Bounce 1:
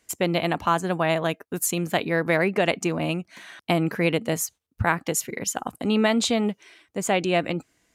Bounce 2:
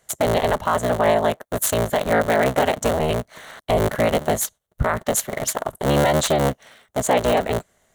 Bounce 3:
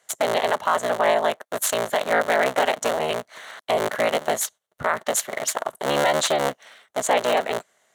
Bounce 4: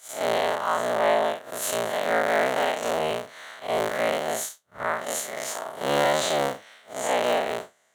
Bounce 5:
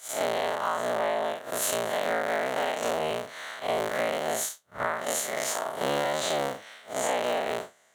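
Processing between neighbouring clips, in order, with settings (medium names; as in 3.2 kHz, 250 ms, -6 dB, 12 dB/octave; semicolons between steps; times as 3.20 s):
cycle switcher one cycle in 3, inverted; graphic EQ with 31 bands 315 Hz -10 dB, 630 Hz +8 dB, 2.5 kHz -10 dB, 5 kHz -10 dB; peak limiter -13.5 dBFS, peak gain reduction 7.5 dB; trim +5 dB
frequency weighting A
spectral blur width 118 ms
compression, threshold -27 dBFS, peak gain reduction 10.5 dB; trim +3 dB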